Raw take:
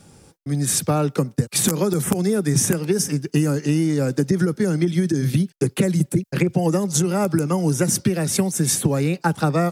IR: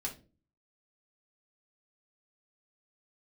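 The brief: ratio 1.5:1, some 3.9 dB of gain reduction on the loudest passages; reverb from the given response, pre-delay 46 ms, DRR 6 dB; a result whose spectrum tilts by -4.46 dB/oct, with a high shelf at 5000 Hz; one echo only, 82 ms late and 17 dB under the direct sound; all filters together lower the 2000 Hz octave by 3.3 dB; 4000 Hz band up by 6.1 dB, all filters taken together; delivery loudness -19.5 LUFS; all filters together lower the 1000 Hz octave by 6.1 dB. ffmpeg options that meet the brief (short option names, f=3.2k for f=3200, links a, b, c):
-filter_complex "[0:a]equalizer=f=1k:t=o:g=-8.5,equalizer=f=2k:t=o:g=-4,equalizer=f=4k:t=o:g=5.5,highshelf=f=5k:g=6.5,acompressor=threshold=-23dB:ratio=1.5,aecho=1:1:82:0.141,asplit=2[a][b];[1:a]atrim=start_sample=2205,adelay=46[c];[b][c]afir=irnorm=-1:irlink=0,volume=-6.5dB[d];[a][d]amix=inputs=2:normalize=0,volume=1.5dB"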